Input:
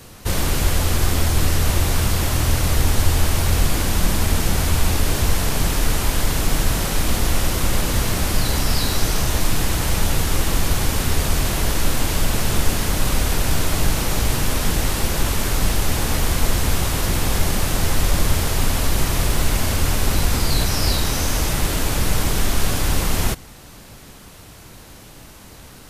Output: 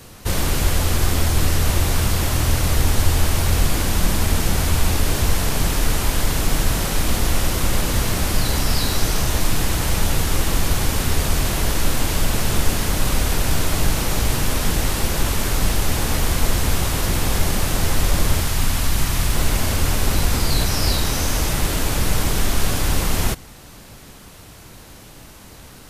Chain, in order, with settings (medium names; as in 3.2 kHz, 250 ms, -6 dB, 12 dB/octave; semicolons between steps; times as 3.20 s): 18.41–19.35 s: peaking EQ 470 Hz -6.5 dB 1.3 oct